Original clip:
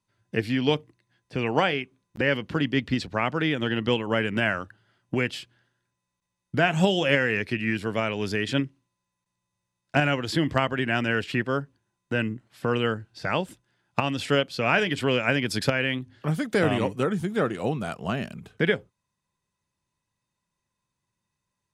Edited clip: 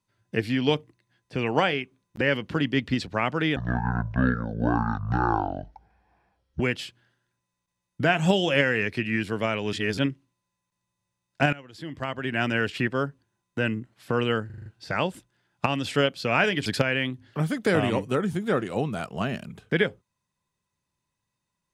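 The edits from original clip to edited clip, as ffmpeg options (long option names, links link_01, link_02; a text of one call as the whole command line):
ffmpeg -i in.wav -filter_complex "[0:a]asplit=12[link_01][link_02][link_03][link_04][link_05][link_06][link_07][link_08][link_09][link_10][link_11][link_12];[link_01]atrim=end=3.564[link_13];[link_02]atrim=start=3.56:end=5.14,asetpts=PTS-STARTPTS,asetrate=22932,aresample=44100,atrim=end_sample=133996,asetpts=PTS-STARTPTS[link_14];[link_03]atrim=start=5.136:end=8.272[link_15];[link_04]atrim=start=8.268:end=8.522,asetpts=PTS-STARTPTS,areverse[link_16];[link_05]atrim=start=8.518:end=10.07,asetpts=PTS-STARTPTS,afade=type=out:start_time=1.548:duration=0.004:curve=hsin:silence=0.105925[link_17];[link_06]atrim=start=10.07:end=13.042,asetpts=PTS-STARTPTS,afade=type=in:duration=0.91:curve=qua:silence=0.105925[link_18];[link_07]atrim=start=12.998:end=13.042[link_19];[link_08]atrim=start=12.998:end=13.042[link_20];[link_09]atrim=start=12.998:end=13.042[link_21];[link_10]atrim=start=12.998:end=13.042[link_22];[link_11]atrim=start=12.998:end=15.002[link_23];[link_12]atrim=start=15.538[link_24];[link_13][link_14]acrossfade=duration=0.004:curve1=hsin:curve2=hsin[link_25];[link_25][link_15]acrossfade=duration=0.004:curve1=hsin:curve2=hsin[link_26];[link_26][link_16]acrossfade=duration=0.004:curve1=hsin:curve2=hsin[link_27];[link_17][link_18]concat=n=2:v=0:a=1[link_28];[link_27][link_28]acrossfade=duration=0.004:curve1=hsin:curve2=hsin[link_29];[link_29][link_19]acrossfade=duration=0.004:curve1=hsin:curve2=hsin[link_30];[link_30][link_20]acrossfade=duration=0.004:curve1=hsin:curve2=hsin[link_31];[link_31][link_21]acrossfade=duration=0.004:curve1=hsin:curve2=hsin[link_32];[link_32][link_22]acrossfade=duration=0.004:curve1=hsin:curve2=hsin[link_33];[link_33][link_23]acrossfade=duration=0.004:curve1=hsin:curve2=hsin[link_34];[link_34][link_24]acrossfade=duration=0.004:curve1=hsin:curve2=hsin" out.wav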